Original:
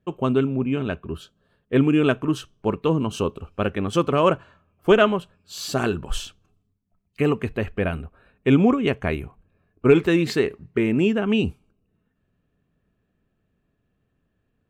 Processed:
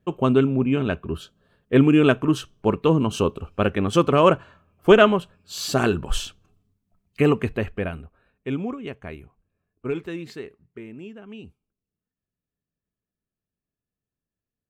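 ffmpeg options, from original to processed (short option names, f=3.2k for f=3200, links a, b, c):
-af "volume=2.5dB,afade=t=out:st=7.38:d=0.55:silence=0.398107,afade=t=out:st=7.93:d=0.72:silence=0.473151,afade=t=out:st=9.86:d=1.12:silence=0.421697"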